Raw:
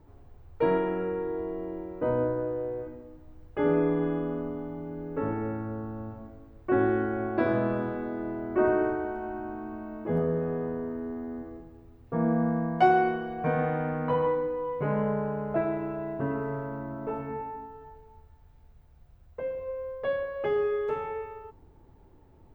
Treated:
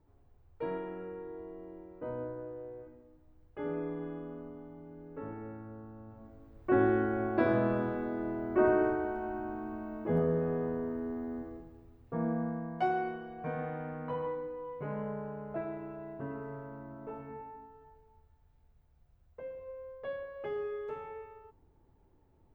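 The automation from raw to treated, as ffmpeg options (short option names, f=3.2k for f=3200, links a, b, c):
-af "volume=-2dB,afade=t=in:st=6.06:d=0.65:silence=0.316228,afade=t=out:st=11.37:d=1.25:silence=0.398107"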